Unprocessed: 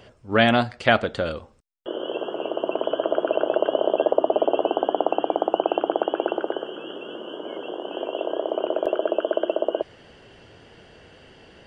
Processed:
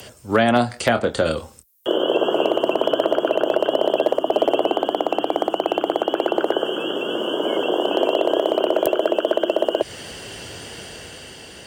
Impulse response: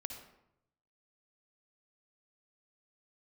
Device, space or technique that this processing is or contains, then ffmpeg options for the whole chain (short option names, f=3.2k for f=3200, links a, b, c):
FM broadcast chain: -filter_complex "[0:a]asettb=1/sr,asplit=3[a][b][c];[a]atrim=end=0.534[d];[b]atrim=start=0.53:end=1.98,asetpts=PTS-STARTPTS,afade=t=in:d=0.004:c=qsin,afade=t=out:st=1.446:d=0.004:c=qsin,asplit=2[e][f];[f]adelay=25,volume=-9dB[g];[e][g]amix=inputs=2:normalize=0,atrim=end_sample=63945[h];[c]atrim=start=1.976[i];[d][h]acrossfade=d=0.004:c1=hsin:c2=qsin[j];[j][i]acrossfade=d=0.004:c1=qsin:c2=hsin,highpass=f=45:w=0.5412,highpass=f=45:w=1.3066,dynaudnorm=f=140:g=13:m=5.5dB,acrossover=split=150|400|1500[k][l][m][n];[k]acompressor=threshold=-40dB:ratio=4[o];[l]acompressor=threshold=-27dB:ratio=4[p];[m]acompressor=threshold=-23dB:ratio=4[q];[n]acompressor=threshold=-42dB:ratio=4[r];[o][p][q][r]amix=inputs=4:normalize=0,aemphasis=mode=production:type=50fm,alimiter=limit=-12.5dB:level=0:latency=1:release=156,asoftclip=type=hard:threshold=-14dB,lowpass=f=15k:w=0.5412,lowpass=f=15k:w=1.3066,aemphasis=mode=production:type=50fm,volume=7.5dB"